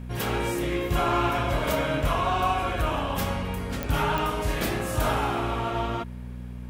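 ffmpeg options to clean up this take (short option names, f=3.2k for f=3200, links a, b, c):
-af "adeclick=t=4,bandreject=f=61:t=h:w=4,bandreject=f=122:t=h:w=4,bandreject=f=183:t=h:w=4,bandreject=f=244:t=h:w=4"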